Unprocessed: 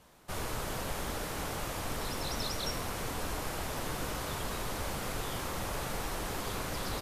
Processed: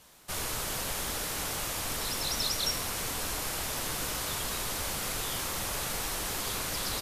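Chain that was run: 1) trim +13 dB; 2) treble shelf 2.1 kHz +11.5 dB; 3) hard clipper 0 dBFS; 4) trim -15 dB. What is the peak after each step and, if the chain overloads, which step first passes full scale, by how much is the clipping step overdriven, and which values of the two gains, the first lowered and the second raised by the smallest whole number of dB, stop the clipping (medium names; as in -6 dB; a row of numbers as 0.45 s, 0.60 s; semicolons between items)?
-8.0 dBFS, -2.5 dBFS, -2.5 dBFS, -17.5 dBFS; nothing clips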